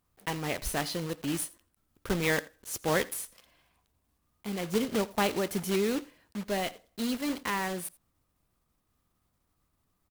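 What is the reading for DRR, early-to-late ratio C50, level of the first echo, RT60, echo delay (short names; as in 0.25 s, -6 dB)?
none, none, -22.0 dB, none, 84 ms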